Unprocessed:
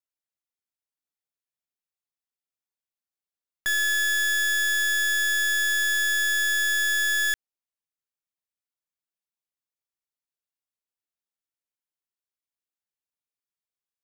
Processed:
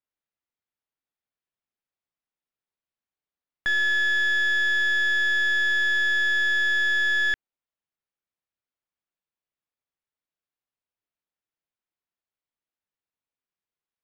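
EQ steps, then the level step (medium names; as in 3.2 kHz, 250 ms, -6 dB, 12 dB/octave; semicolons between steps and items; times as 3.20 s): distance through air 240 m; +4.0 dB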